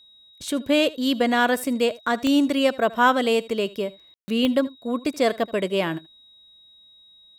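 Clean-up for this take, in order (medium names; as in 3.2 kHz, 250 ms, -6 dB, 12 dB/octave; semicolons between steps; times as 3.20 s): de-click; band-stop 3.8 kHz, Q 30; room tone fill 4.14–4.28 s; inverse comb 78 ms -20.5 dB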